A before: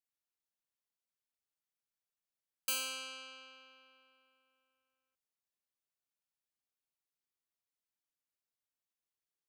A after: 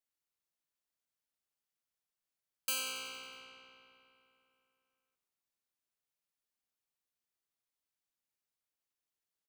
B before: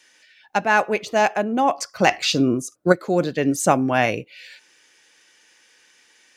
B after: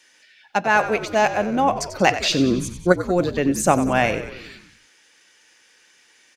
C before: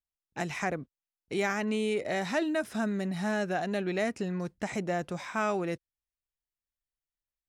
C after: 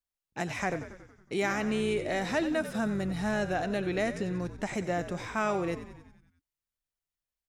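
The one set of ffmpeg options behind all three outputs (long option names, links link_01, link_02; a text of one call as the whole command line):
ffmpeg -i in.wav -filter_complex "[0:a]asplit=8[link_01][link_02][link_03][link_04][link_05][link_06][link_07][link_08];[link_02]adelay=92,afreqshift=-61,volume=-12dB[link_09];[link_03]adelay=184,afreqshift=-122,volume=-16.4dB[link_10];[link_04]adelay=276,afreqshift=-183,volume=-20.9dB[link_11];[link_05]adelay=368,afreqshift=-244,volume=-25.3dB[link_12];[link_06]adelay=460,afreqshift=-305,volume=-29.7dB[link_13];[link_07]adelay=552,afreqshift=-366,volume=-34.2dB[link_14];[link_08]adelay=644,afreqshift=-427,volume=-38.6dB[link_15];[link_01][link_09][link_10][link_11][link_12][link_13][link_14][link_15]amix=inputs=8:normalize=0" out.wav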